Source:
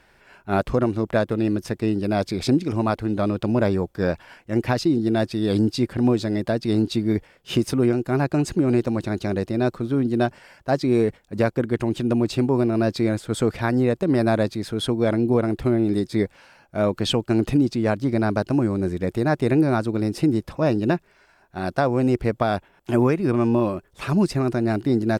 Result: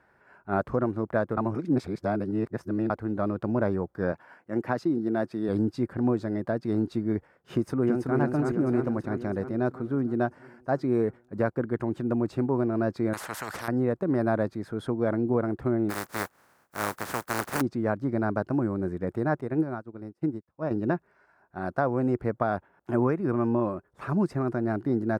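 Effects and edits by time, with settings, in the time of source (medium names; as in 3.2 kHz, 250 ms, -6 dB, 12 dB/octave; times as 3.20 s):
1.37–2.90 s: reverse
4.12–5.49 s: high-pass 150 Hz
7.54–8.18 s: echo throw 330 ms, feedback 65%, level -3.5 dB
13.13–13.68 s: spectrum-flattening compressor 10:1
15.89–17.60 s: spectral contrast reduction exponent 0.17
19.41–20.71 s: upward expansion 2.5:1, over -40 dBFS
whole clip: high-pass 78 Hz; resonant high shelf 2.1 kHz -11.5 dB, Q 1.5; trim -6 dB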